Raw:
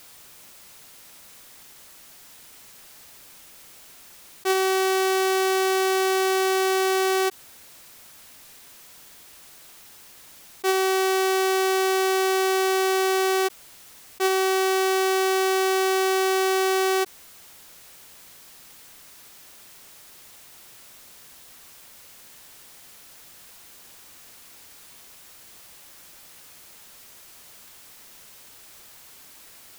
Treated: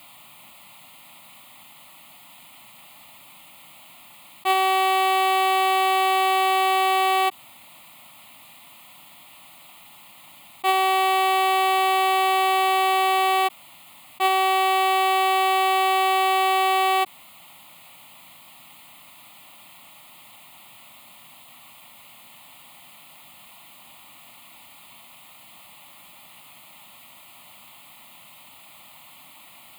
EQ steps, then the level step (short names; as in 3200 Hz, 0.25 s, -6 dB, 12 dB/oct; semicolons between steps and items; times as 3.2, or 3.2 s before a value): HPF 160 Hz 12 dB/oct; high shelf 4600 Hz -8.5 dB; fixed phaser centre 1600 Hz, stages 6; +8.5 dB